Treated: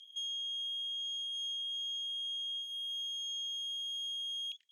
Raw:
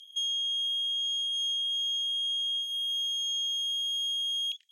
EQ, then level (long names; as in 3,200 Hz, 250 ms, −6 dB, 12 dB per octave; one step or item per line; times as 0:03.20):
high-shelf EQ 6,200 Hz −10.5 dB
dynamic equaliser 3,200 Hz, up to −4 dB, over −45 dBFS, Q 0.89
−2.0 dB